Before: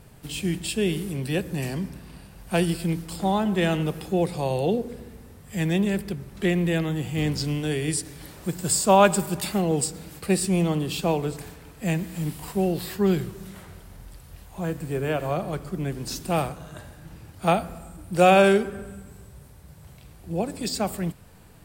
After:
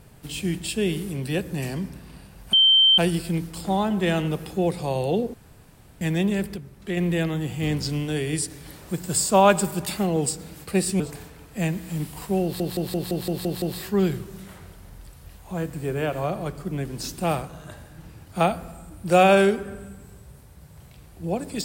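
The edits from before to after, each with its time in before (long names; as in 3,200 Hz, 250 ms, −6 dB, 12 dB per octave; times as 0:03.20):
0:02.53: insert tone 3,120 Hz −12.5 dBFS 0.45 s
0:04.89–0:05.56: fill with room tone
0:06.11–0:06.52: clip gain −5.5 dB
0:10.55–0:11.26: remove
0:12.69: stutter 0.17 s, 8 plays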